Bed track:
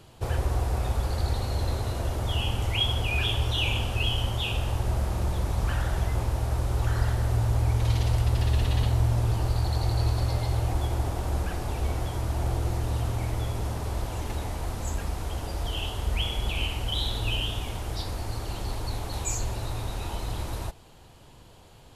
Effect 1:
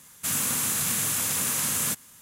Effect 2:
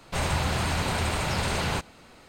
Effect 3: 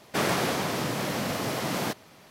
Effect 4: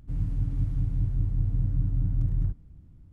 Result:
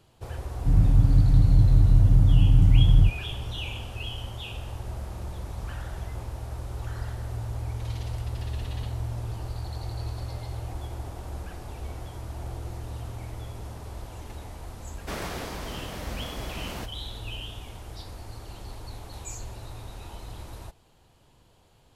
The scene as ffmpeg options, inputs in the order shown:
-filter_complex "[0:a]volume=0.376[s0];[4:a]alimiter=level_in=7.5:limit=0.891:release=50:level=0:latency=1,atrim=end=3.12,asetpts=PTS-STARTPTS,volume=0.422,afade=t=in:d=0.004:c=hsin,afade=t=out:st=3.116:d=0.004:c=hsin,adelay=570[s1];[3:a]atrim=end=2.3,asetpts=PTS-STARTPTS,volume=0.355,afade=t=in:d=0.004:c=hsin,afade=t=out:st=2.296:d=0.004:c=hsin,adelay=14930[s2];[s0][s1][s2]amix=inputs=3:normalize=0"

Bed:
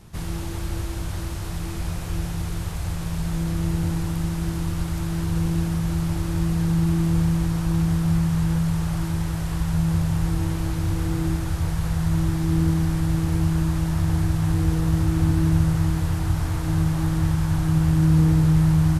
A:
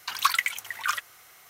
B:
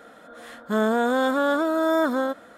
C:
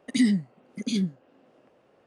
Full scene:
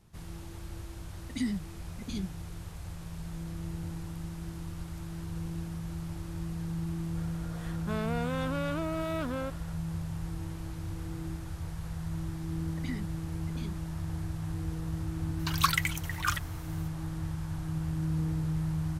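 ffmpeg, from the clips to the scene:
-filter_complex "[3:a]asplit=2[s0][s1];[0:a]volume=0.2[s2];[2:a]asoftclip=type=tanh:threshold=0.0668[s3];[s1]bandpass=f=1000:t=q:w=0.81:csg=0[s4];[1:a]equalizer=f=2100:w=1.5:g=-2[s5];[s0]atrim=end=2.06,asetpts=PTS-STARTPTS,volume=0.299,afade=t=in:d=0.004:c=hsin,afade=t=out:st=2.056:d=0.004:c=hsin,adelay=1210[s6];[s3]atrim=end=2.57,asetpts=PTS-STARTPTS,volume=0.447,afade=t=in:d=0.004:c=hsin,afade=t=out:st=2.566:d=0.004:c=hsin,adelay=7170[s7];[s4]atrim=end=2.06,asetpts=PTS-STARTPTS,volume=0.447,afade=t=in:d=0.004:c=hsin,afade=t=out:st=2.056:d=0.004:c=hsin,adelay=12690[s8];[s5]atrim=end=1.49,asetpts=PTS-STARTPTS,volume=0.75,afade=t=in:d=0.004:c=hsin,afade=t=out:st=1.486:d=0.004:c=hsin,adelay=15390[s9];[s2][s6][s7][s8][s9]amix=inputs=5:normalize=0"

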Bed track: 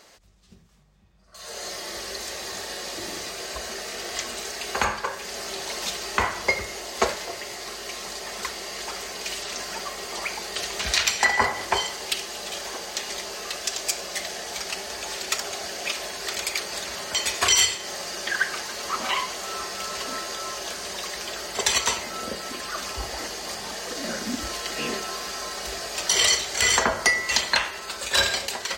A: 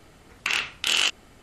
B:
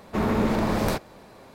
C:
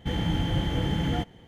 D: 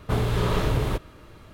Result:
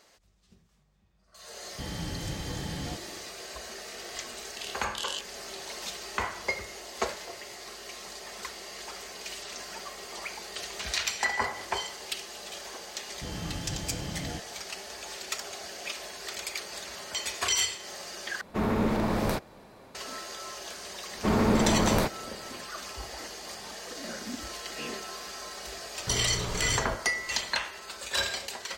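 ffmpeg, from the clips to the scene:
-filter_complex "[3:a]asplit=2[s0][s1];[2:a]asplit=2[s2][s3];[0:a]volume=0.398[s4];[1:a]asuperstop=centerf=1400:order=12:qfactor=0.6[s5];[s4]asplit=2[s6][s7];[s6]atrim=end=18.414[s8];[s2]atrim=end=1.54,asetpts=PTS-STARTPTS,volume=0.668[s9];[s7]atrim=start=19.946[s10];[s0]atrim=end=1.47,asetpts=PTS-STARTPTS,volume=0.316,afade=t=in:d=0.004:c=hsin,afade=t=out:st=1.466:d=0.004:c=hsin,adelay=1730[s11];[s5]atrim=end=1.42,asetpts=PTS-STARTPTS,volume=0.299,afade=t=in:d=0.004:c=hsin,afade=t=out:st=1.416:d=0.004:c=hsin,adelay=4110[s12];[s1]atrim=end=1.47,asetpts=PTS-STARTPTS,volume=0.299,afade=t=in:d=0.004:c=hsin,afade=t=out:st=1.466:d=0.004:c=hsin,adelay=580356S[s13];[s3]atrim=end=1.54,asetpts=PTS-STARTPTS,volume=0.944,afade=t=in:d=0.004:c=hsin,afade=t=out:st=1.536:d=0.004:c=hsin,adelay=21100[s14];[4:a]atrim=end=1.53,asetpts=PTS-STARTPTS,volume=0.299,afade=t=in:d=0.004:c=hsin,afade=t=out:st=1.526:d=0.004:c=hsin,adelay=25980[s15];[s8][s9]acrossfade=d=0.004:c1=hsin:c2=hsin[s16];[s16][s10]acrossfade=d=0.004:c1=hsin:c2=hsin[s17];[s17][s11][s12][s13][s14][s15]amix=inputs=6:normalize=0"

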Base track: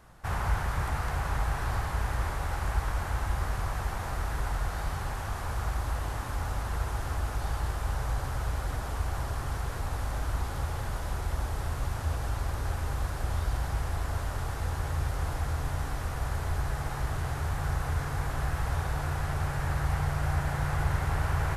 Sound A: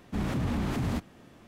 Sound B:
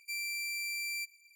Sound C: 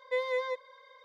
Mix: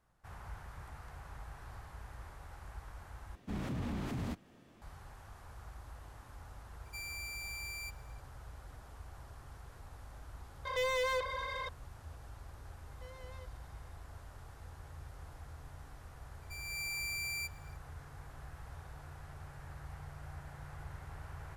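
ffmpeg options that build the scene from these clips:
-filter_complex "[2:a]asplit=2[s0][s1];[3:a]asplit=2[s2][s3];[0:a]volume=0.112[s4];[1:a]acompressor=mode=upward:threshold=0.00398:ratio=2.5:attack=3.2:release=140:knee=2.83:detection=peak[s5];[s2]asplit=2[s6][s7];[s7]highpass=f=720:p=1,volume=39.8,asoftclip=type=tanh:threshold=0.0794[s8];[s6][s8]amix=inputs=2:normalize=0,lowpass=f=3500:p=1,volume=0.501[s9];[s3]asoftclip=type=tanh:threshold=0.0126[s10];[s1]dynaudnorm=f=190:g=3:m=2.82[s11];[s4]asplit=2[s12][s13];[s12]atrim=end=3.354[s14];[s5]atrim=end=1.47,asetpts=PTS-STARTPTS,volume=0.376[s15];[s13]atrim=start=4.816[s16];[s0]atrim=end=1.35,asetpts=PTS-STARTPTS,volume=0.447,afade=t=in:d=0.004:c=hsin,afade=t=out:st=1.346:d=0.004:c=hsin,adelay=6850[s17];[s9]atrim=end=1.04,asetpts=PTS-STARTPTS,volume=0.531,afade=t=in:d=0.004:c=hsin,afade=t=out:st=1.036:d=0.004:c=hsin,adelay=10650[s18];[s10]atrim=end=1.04,asetpts=PTS-STARTPTS,volume=0.2,afade=t=in:d=0.004:c=hsin,afade=t=out:st=1.036:d=0.004:c=hsin,adelay=12900[s19];[s11]atrim=end=1.35,asetpts=PTS-STARTPTS,volume=0.282,afade=t=in:d=0.004:c=hsin,afade=t=out:st=1.346:d=0.004:c=hsin,adelay=16420[s20];[s14][s15]acrossfade=d=0.004:c1=hsin:c2=hsin[s21];[s21][s16]acrossfade=d=0.004:c1=hsin:c2=hsin[s22];[s22][s17][s18][s19][s20]amix=inputs=5:normalize=0"

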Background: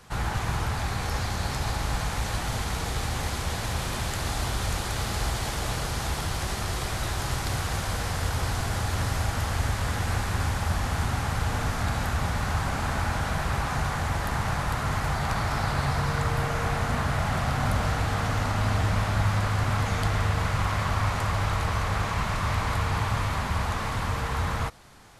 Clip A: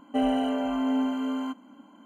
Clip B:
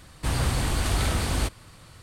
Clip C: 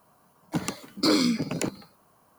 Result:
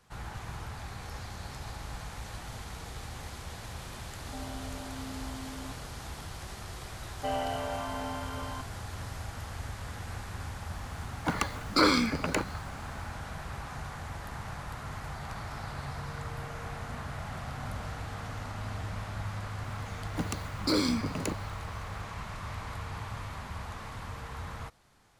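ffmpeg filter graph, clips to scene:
-filter_complex "[1:a]asplit=2[s0][s1];[3:a]asplit=2[s2][s3];[0:a]volume=0.237[s4];[s0]acompressor=threshold=0.0178:ratio=6:attack=3.2:release=140:knee=1:detection=peak[s5];[s1]acrossover=split=480 3600:gain=0.0794 1 0.178[s6][s7][s8];[s6][s7][s8]amix=inputs=3:normalize=0[s9];[s2]equalizer=f=1400:t=o:w=2.3:g=13.5[s10];[s5]atrim=end=2.05,asetpts=PTS-STARTPTS,volume=0.473,afade=t=in:d=0.004:c=hsin,afade=t=out:st=2.046:d=0.004:c=hsin,adelay=4190[s11];[s9]atrim=end=2.05,asetpts=PTS-STARTPTS,volume=0.891,afade=t=in:d=0.004:c=hsin,afade=t=out:st=2.046:d=0.004:c=hsin,adelay=7090[s12];[s10]atrim=end=2.38,asetpts=PTS-STARTPTS,volume=0.501,afade=t=in:d=0.004:c=hsin,afade=t=out:st=2.376:d=0.004:c=hsin,adelay=10730[s13];[s3]atrim=end=2.38,asetpts=PTS-STARTPTS,volume=0.531,afade=t=in:d=0.004:c=hsin,afade=t=out:st=2.376:d=0.004:c=hsin,adelay=19640[s14];[s4][s11][s12][s13][s14]amix=inputs=5:normalize=0"

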